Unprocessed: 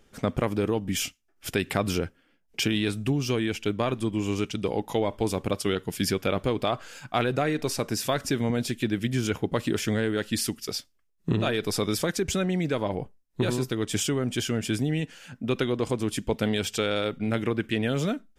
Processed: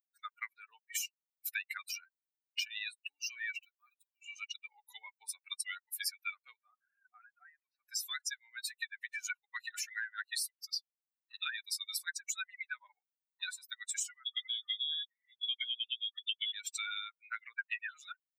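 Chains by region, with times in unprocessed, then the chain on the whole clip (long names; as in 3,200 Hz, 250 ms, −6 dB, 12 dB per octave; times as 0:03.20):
0:03.58–0:04.22: variable-slope delta modulation 64 kbit/s + downward compressor 2.5 to 1, threshold −36 dBFS
0:06.56–0:07.89: low-pass filter 1,600 Hz + downward compressor 4 to 1, threshold −31 dBFS
0:14.26–0:16.52: low-shelf EQ 170 Hz −10 dB + voice inversion scrambler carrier 3,600 Hz
whole clip: spectral dynamics exaggerated over time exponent 3; Chebyshev high-pass filter 1,500 Hz, order 5; downward compressor 5 to 1, threshold −53 dBFS; level +16 dB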